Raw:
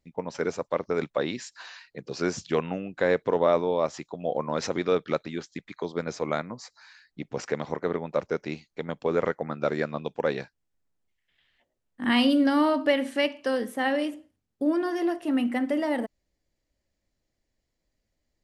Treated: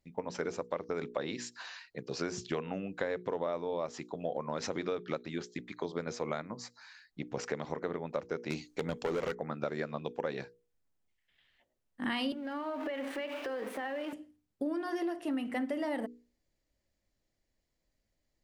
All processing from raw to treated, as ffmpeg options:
-filter_complex "[0:a]asettb=1/sr,asplit=3[s0][s1][s2];[s0]atrim=end=8.504[s3];[s1]atrim=start=8.5:end=9.35,asetpts=PTS-STARTPTS,afade=t=in:d=0.004:c=qsin,afade=t=out:st=0.846:d=0.004:c=qsin,equalizer=f=7000:t=o:w=1.2:g=7.5,asoftclip=type=hard:threshold=0.0531,acontrast=61[s4];[s2]atrim=start=9.346[s5];[s3][s4]acrossfade=d=0.004:c1=hsin:c2=qsin[s6];[s6][s5]acrossfade=d=0.004:c1=qsin:c2=hsin,asettb=1/sr,asplit=3[s7][s8][s9];[s7]atrim=end=12.324[s10];[s8]atrim=start=12.32:end=14.13,asetpts=PTS-STARTPTS,afade=t=in:d=0.004:c=qsin,afade=t=out:st=1.806:d=0.004:c=qsin,aeval=exprs='val(0)+0.5*0.0251*sgn(val(0))':c=same,acrossover=split=270 3200:gain=0.0794 1 0.178[s11][s12][s13];[s11][s12][s13]amix=inputs=3:normalize=0,acompressor=threshold=0.0316:ratio=10:attack=3.2:release=140:knee=1:detection=peak[s14];[s9]atrim=start=14.126[s15];[s10][s14]acrossfade=d=0.004:c1=hsin:c2=qsin[s16];[s16][s15]acrossfade=d=0.004:c1=qsin:c2=hsin,bandreject=f=60:t=h:w=6,bandreject=f=120:t=h:w=6,bandreject=f=180:t=h:w=6,bandreject=f=240:t=h:w=6,bandreject=f=300:t=h:w=6,bandreject=f=360:t=h:w=6,bandreject=f=420:t=h:w=6,bandreject=f=480:t=h:w=6,acompressor=threshold=0.0355:ratio=6,volume=0.794"

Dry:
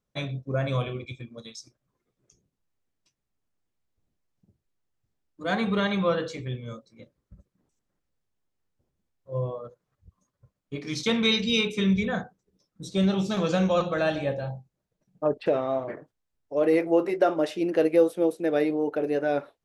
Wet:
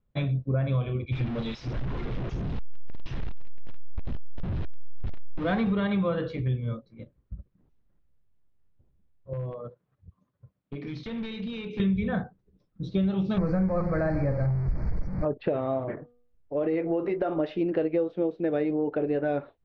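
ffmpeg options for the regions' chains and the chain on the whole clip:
-filter_complex "[0:a]asettb=1/sr,asplit=3[s0][s1][s2];[s0]atrim=end=1.124[s3];[s1]atrim=start=1.12:end=5.73,asetpts=PTS-STARTPTS,afade=t=in:d=0.004:c=qsin,afade=t=out:st=4.606:d=0.004:c=qsin,aeval=exprs='val(0)+0.5*0.0282*sgn(val(0))':c=same,bandreject=f=4500:w=21[s4];[s2]atrim=start=5.726[s5];[s3][s4]acrossfade=d=0.004:c1=hsin:c2=qsin[s6];[s6][s5]acrossfade=d=0.004:c1=qsin:c2=hsin,asettb=1/sr,asplit=3[s7][s8][s9];[s7]atrim=end=9.334[s10];[s8]atrim=start=9.33:end=11.8,asetpts=PTS-STARTPTS,afade=t=in:d=0.004:c=qsin,afade=t=out:st=2.466:d=0.004:c=qsin,highpass=120,acompressor=threshold=0.0178:ratio=5:attack=3.2:release=140:knee=1:detection=peak,aeval=exprs='0.0251*(abs(mod(val(0)/0.0251+3,4)-2)-1)':c=same[s11];[s9]atrim=start=11.796[s12];[s10][s11]acrossfade=d=0.004:c1=hsin:c2=qsin[s13];[s13][s12]acrossfade=d=0.004:c1=qsin:c2=hsin,asettb=1/sr,asplit=3[s14][s15][s16];[s14]atrim=end=13.384[s17];[s15]atrim=start=13.38:end=15.25,asetpts=PTS-STARTPTS,afade=t=in:d=0.004:c=qsin,afade=t=out:st=1.866:d=0.004:c=qsin,aeval=exprs='val(0)+0.5*0.0316*sgn(val(0))':c=same,asuperstop=centerf=3200:order=12:qfactor=1.6,lowshelf=f=89:g=11[s18];[s16]atrim=start=15.246[s19];[s17][s18]acrossfade=d=0.004:c1=hsin:c2=qsin[s20];[s20][s19]acrossfade=d=0.004:c1=qsin:c2=hsin,asettb=1/sr,asplit=3[s21][s22][s23];[s21]atrim=end=15.884[s24];[s22]atrim=start=15.88:end=17.4,asetpts=PTS-STARTPTS,afade=t=in:d=0.004:c=qsin,afade=t=out:st=1.516:d=0.004:c=qsin,bandreject=f=242.3:t=h:w=4,bandreject=f=484.6:t=h:w=4,bandreject=f=726.9:t=h:w=4,bandreject=f=969.2:t=h:w=4,bandreject=f=1211.5:t=h:w=4,acompressor=threshold=0.0562:ratio=2:attack=3.2:release=140:knee=1:detection=peak[s25];[s23]atrim=start=17.396[s26];[s24][s25]acrossfade=d=0.004:c1=hsin:c2=qsin[s27];[s27][s26]acrossfade=d=0.004:c1=qsin:c2=hsin,lowpass=f=4100:w=0.5412,lowpass=f=4100:w=1.3066,aemphasis=mode=reproduction:type=bsi,acompressor=threshold=0.0708:ratio=5"

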